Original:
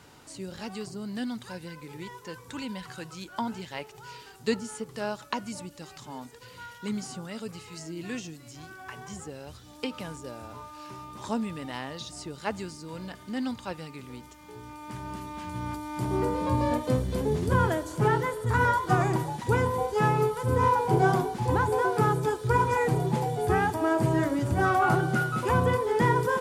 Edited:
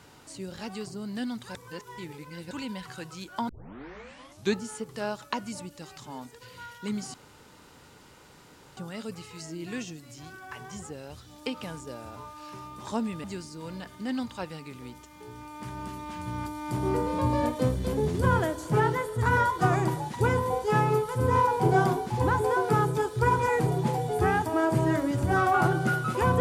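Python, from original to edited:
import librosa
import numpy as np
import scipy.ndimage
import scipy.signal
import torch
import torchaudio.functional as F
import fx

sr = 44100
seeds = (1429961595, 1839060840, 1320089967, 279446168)

y = fx.edit(x, sr, fx.reverse_span(start_s=1.55, length_s=0.96),
    fx.tape_start(start_s=3.49, length_s=1.11),
    fx.insert_room_tone(at_s=7.14, length_s=1.63),
    fx.cut(start_s=11.61, length_s=0.91), tone=tone)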